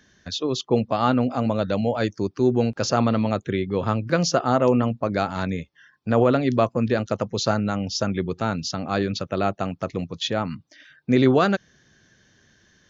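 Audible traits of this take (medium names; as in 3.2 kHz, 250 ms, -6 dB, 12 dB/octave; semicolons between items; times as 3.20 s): noise floor -62 dBFS; spectral tilt -5.5 dB/octave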